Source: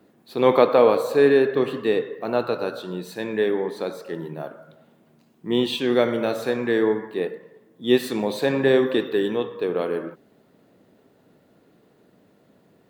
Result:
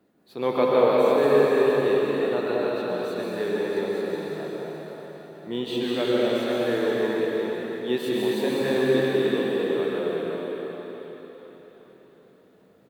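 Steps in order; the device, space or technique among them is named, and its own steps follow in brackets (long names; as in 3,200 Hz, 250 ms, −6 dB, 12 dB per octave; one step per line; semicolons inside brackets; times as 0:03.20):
cave (single-tap delay 361 ms −8 dB; convolution reverb RT60 4.4 s, pre-delay 112 ms, DRR −5 dB)
level −8.5 dB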